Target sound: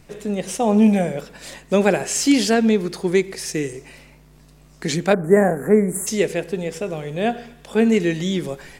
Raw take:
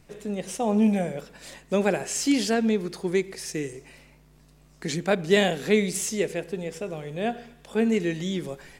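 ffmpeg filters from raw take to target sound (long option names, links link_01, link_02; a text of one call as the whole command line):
ffmpeg -i in.wav -filter_complex "[0:a]asplit=3[link_01][link_02][link_03];[link_01]afade=type=out:start_time=5.12:duration=0.02[link_04];[link_02]asuperstop=centerf=3900:order=8:qfactor=0.58,afade=type=in:start_time=5.12:duration=0.02,afade=type=out:start_time=6.06:duration=0.02[link_05];[link_03]afade=type=in:start_time=6.06:duration=0.02[link_06];[link_04][link_05][link_06]amix=inputs=3:normalize=0,volume=6.5dB" out.wav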